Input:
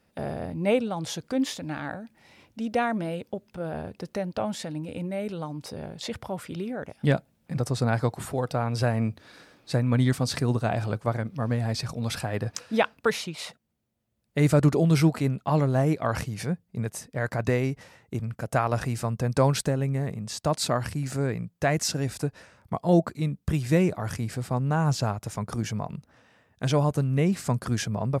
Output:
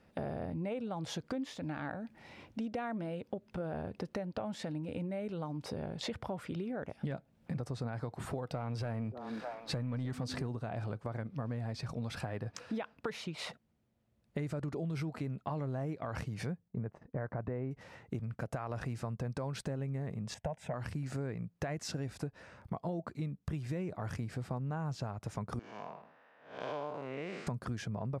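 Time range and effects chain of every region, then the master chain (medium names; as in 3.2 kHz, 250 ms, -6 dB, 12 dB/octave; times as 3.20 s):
8.47–10.48 s: waveshaping leveller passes 1 + repeats whose band climbs or falls 303 ms, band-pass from 340 Hz, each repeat 1.4 oct, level -10 dB
16.68–17.71 s: low-pass 1.3 kHz + gate -51 dBFS, range -12 dB
20.34–20.74 s: low-pass 2.7 kHz 6 dB/octave + static phaser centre 1.2 kHz, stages 6
25.59–27.47 s: spectral blur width 243 ms + band-pass 580–3900 Hz + tape noise reduction on one side only decoder only
whole clip: low-pass 2.6 kHz 6 dB/octave; peak limiter -18 dBFS; compression 6:1, threshold -39 dBFS; trim +3 dB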